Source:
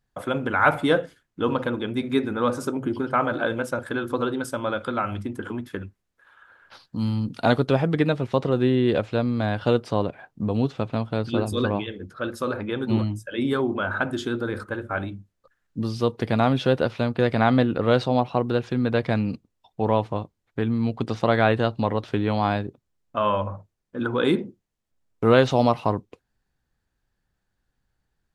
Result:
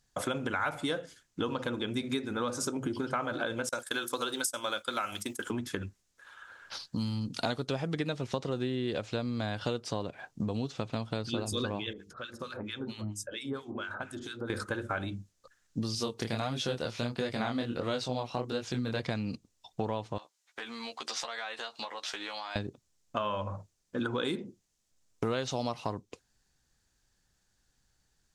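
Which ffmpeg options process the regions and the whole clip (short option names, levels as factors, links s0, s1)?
-filter_complex "[0:a]asettb=1/sr,asplit=3[s0][s1][s2];[s0]atrim=end=3.694[s3];[s1]atrim=start=3.69:end=5.5,asetpts=PTS-STARTPTS,afade=t=in:d=0.004:c=qsin,afade=t=out:st=1.806:d=0.004:c=qsin,agate=range=0.0224:threshold=0.0355:ratio=3:release=100:detection=peak,aemphasis=mode=production:type=riaa[s4];[s2]atrim=start=5.496[s5];[s3][s4]acrossfade=d=0.004:c1=hsin:c2=qsin[s6];[s6][s5]acrossfade=d=0.004:c1=qsin:c2=hsin,asettb=1/sr,asplit=3[s7][s8][s9];[s7]atrim=end=11.934[s10];[s8]atrim=start=11.93:end=14.5,asetpts=PTS-STARTPTS,afade=t=in:d=0.004:c=qsin,afade=t=out:st=2.566:d=0.004:c=qsin,acompressor=threshold=0.0158:ratio=2:attack=3.2:release=140:knee=1:detection=peak,acrossover=split=1300[s11][s12];[s11]aeval=exprs='val(0)*(1-1/2+1/2*cos(2*PI*4.4*n/s))':c=same[s13];[s12]aeval=exprs='val(0)*(1-1/2-1/2*cos(2*PI*4.4*n/s))':c=same[s14];[s13][s14]amix=inputs=2:normalize=0,bandreject=f=50:t=h:w=6,bandreject=f=100:t=h:w=6,bandreject=f=150:t=h:w=6,bandreject=f=200:t=h:w=6,bandreject=f=250:t=h:w=6,bandreject=f=300:t=h:w=6,bandreject=f=350:t=h:w=6,bandreject=f=400:t=h:w=6,bandreject=f=450:t=h:w=6[s15];[s9]atrim=start=14.496[s16];[s10][s15]acrossfade=d=0.004:c1=hsin:c2=qsin[s17];[s17][s16]acrossfade=d=0.004:c1=qsin:c2=hsin,asettb=1/sr,asplit=3[s18][s19][s20];[s18]atrim=end=15.954[s21];[s19]atrim=start=15.95:end=19,asetpts=PTS-STARTPTS,afade=t=in:d=0.004:c=qsin,afade=t=out:st=3.046:d=0.004:c=qsin,highshelf=f=9500:g=10.5,flanger=delay=20:depth=7.1:speed=1.5[s22];[s20]atrim=start=18.996[s23];[s21][s22]acrossfade=d=0.004:c1=hsin:c2=qsin[s24];[s24][s23]acrossfade=d=0.004:c1=qsin:c2=hsin,asettb=1/sr,asplit=3[s25][s26][s27];[s25]atrim=end=20.184[s28];[s26]atrim=start=20.18:end=22.56,asetpts=PTS-STARTPTS,afade=t=in:d=0.004:c=qsin,afade=t=out:st=2.376:d=0.004:c=qsin,highpass=910,acompressor=threshold=0.0112:ratio=5:attack=3.2:release=140:knee=1:detection=peak,asplit=2[s29][s30];[s30]adelay=13,volume=0.631[s31];[s29][s31]amix=inputs=2:normalize=0,atrim=end_sample=104958[s32];[s27]atrim=start=22.556[s33];[s28][s32]acrossfade=d=0.004:c1=hsin:c2=qsin[s34];[s34][s33]acrossfade=d=0.004:c1=qsin:c2=hsin,equalizer=f=6500:w=0.71:g=15,acompressor=threshold=0.0316:ratio=6"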